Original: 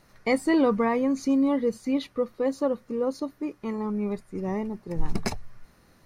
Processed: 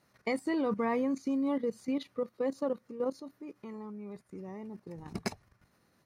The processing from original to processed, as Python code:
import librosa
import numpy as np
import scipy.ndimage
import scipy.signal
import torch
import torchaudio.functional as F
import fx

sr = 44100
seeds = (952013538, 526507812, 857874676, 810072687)

y = fx.level_steps(x, sr, step_db=13)
y = scipy.signal.sosfilt(scipy.signal.butter(2, 95.0, 'highpass', fs=sr, output='sos'), y)
y = y * librosa.db_to_amplitude(-3.5)